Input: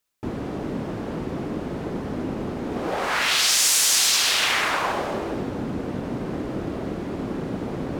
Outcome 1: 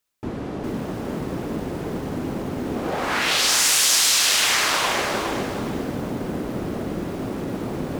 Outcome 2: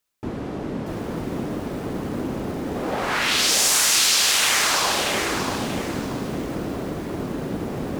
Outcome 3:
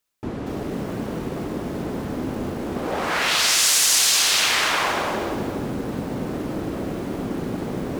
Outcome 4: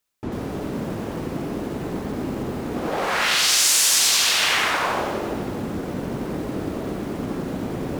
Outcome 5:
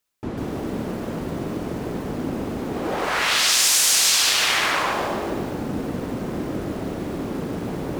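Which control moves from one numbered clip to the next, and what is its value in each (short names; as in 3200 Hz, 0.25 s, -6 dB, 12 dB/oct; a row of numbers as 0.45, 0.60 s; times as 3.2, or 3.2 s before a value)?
lo-fi delay, time: 409, 634, 236, 90, 146 ms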